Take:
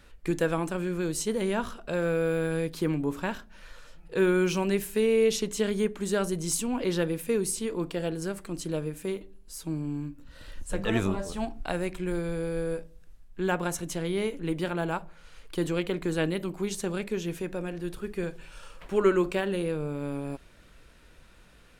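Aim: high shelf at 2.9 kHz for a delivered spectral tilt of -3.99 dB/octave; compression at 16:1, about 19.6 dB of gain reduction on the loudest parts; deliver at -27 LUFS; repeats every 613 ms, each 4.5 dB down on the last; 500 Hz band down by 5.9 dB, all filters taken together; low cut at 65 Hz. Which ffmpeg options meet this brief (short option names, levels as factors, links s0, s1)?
-af "highpass=65,equalizer=f=500:t=o:g=-8,highshelf=f=2900:g=6.5,acompressor=threshold=0.0112:ratio=16,aecho=1:1:613|1226|1839|2452|3065|3678|4291|4904|5517:0.596|0.357|0.214|0.129|0.0772|0.0463|0.0278|0.0167|0.01,volume=5.62"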